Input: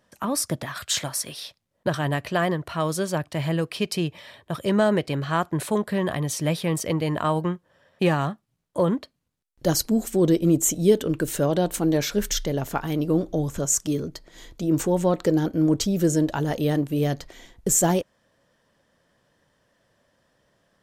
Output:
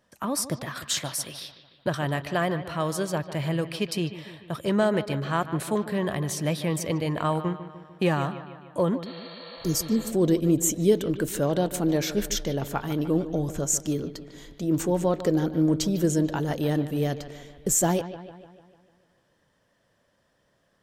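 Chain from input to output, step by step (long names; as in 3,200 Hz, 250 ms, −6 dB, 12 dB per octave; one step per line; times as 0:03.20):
bucket-brigade delay 149 ms, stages 4,096, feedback 56%, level −13 dB
healed spectral selection 0:09.09–0:10.08, 490–4,600 Hz before
level −2.5 dB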